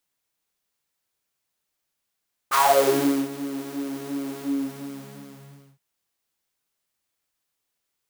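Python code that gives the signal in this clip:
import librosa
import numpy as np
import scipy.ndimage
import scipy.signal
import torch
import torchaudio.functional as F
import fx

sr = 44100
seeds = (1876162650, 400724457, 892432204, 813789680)

y = fx.sub_patch_pwm(sr, seeds[0], note=49, wave2='saw', interval_st=0, detune_cents=16, level2_db=-9.0, sub_db=-15.0, noise_db=-6.0, kind='highpass', cutoff_hz=160.0, q=9.8, env_oct=3.0, env_decay_s=0.46, env_sustain_pct=30, attack_ms=33.0, decay_s=0.74, sustain_db=-19.0, release_s=1.41, note_s=1.86, lfo_hz=2.8, width_pct=35, width_swing_pct=20)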